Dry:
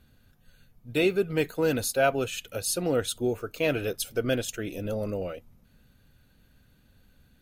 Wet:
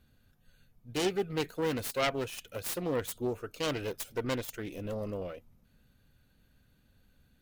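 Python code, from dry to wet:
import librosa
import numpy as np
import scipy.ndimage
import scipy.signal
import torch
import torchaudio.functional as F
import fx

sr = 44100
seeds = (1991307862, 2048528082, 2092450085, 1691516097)

y = fx.self_delay(x, sr, depth_ms=0.32)
y = y * librosa.db_to_amplitude(-5.5)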